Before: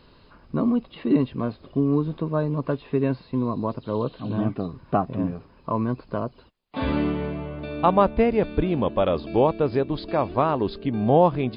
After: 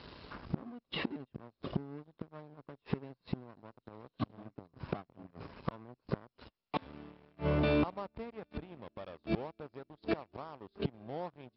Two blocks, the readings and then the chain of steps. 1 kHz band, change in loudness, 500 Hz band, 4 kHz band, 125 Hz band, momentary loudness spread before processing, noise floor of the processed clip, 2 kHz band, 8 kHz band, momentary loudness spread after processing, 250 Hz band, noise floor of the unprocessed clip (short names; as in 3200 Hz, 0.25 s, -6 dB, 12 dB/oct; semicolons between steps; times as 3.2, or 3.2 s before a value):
-19.0 dB, -15.5 dB, -17.5 dB, -6.5 dB, -13.5 dB, 10 LU, under -85 dBFS, -8.0 dB, n/a, 17 LU, -16.0 dB, -54 dBFS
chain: flipped gate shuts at -22 dBFS, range -30 dB; sample leveller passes 3; HPF 53 Hz; gain -5 dB; MP2 48 kbps 44100 Hz